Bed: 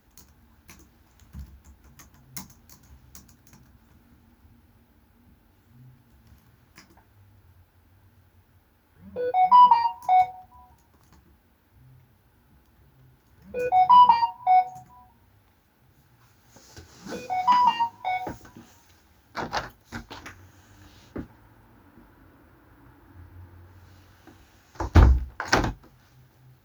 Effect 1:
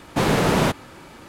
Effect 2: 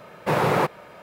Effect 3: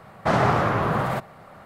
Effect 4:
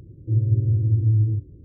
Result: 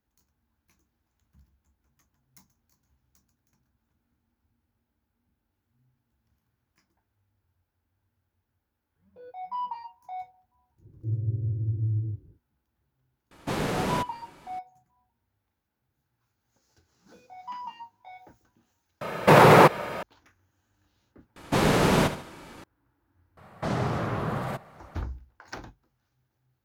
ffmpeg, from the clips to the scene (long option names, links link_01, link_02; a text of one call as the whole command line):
ffmpeg -i bed.wav -i cue0.wav -i cue1.wav -i cue2.wav -i cue3.wav -filter_complex "[1:a]asplit=2[link_01][link_02];[0:a]volume=-19dB[link_03];[2:a]alimiter=level_in=15.5dB:limit=-1dB:release=50:level=0:latency=1[link_04];[link_02]aecho=1:1:72|144|216|288:0.266|0.104|0.0405|0.0158[link_05];[3:a]acrossover=split=480|3000[link_06][link_07][link_08];[link_07]acompressor=threshold=-27dB:ratio=6:attack=3.2:release=140:knee=2.83:detection=peak[link_09];[link_06][link_09][link_08]amix=inputs=3:normalize=0[link_10];[link_03]asplit=2[link_11][link_12];[link_11]atrim=end=21.364[link_13];[link_05]atrim=end=1.28,asetpts=PTS-STARTPTS,volume=-3dB[link_14];[link_12]atrim=start=22.636[link_15];[4:a]atrim=end=1.64,asetpts=PTS-STARTPTS,volume=-9dB,afade=type=in:duration=0.1,afade=type=out:start_time=1.54:duration=0.1,adelay=10760[link_16];[link_01]atrim=end=1.28,asetpts=PTS-STARTPTS,volume=-9.5dB,afade=type=in:duration=0.004:curve=hsin,afade=type=out:start_time=1.276:duration=0.004:curve=hsin,adelay=13310[link_17];[link_04]atrim=end=1.02,asetpts=PTS-STARTPTS,volume=-4dB,afade=type=in:duration=0.004:curve=hsin,afade=type=out:start_time=1.016:duration=0.004:curve=hsin,adelay=19010[link_18];[link_10]atrim=end=1.65,asetpts=PTS-STARTPTS,volume=-5dB,afade=type=in:duration=0.004:curve=hsin,afade=type=out:start_time=1.646:duration=0.004:curve=hsin,adelay=23370[link_19];[link_13][link_14]acrossfade=duration=0.004:curve1=hsin:curve2=hsin[link_20];[link_20][link_15]acrossfade=duration=0.004:curve1=hsin:curve2=hsin[link_21];[link_21][link_16][link_17][link_18][link_19]amix=inputs=5:normalize=0" out.wav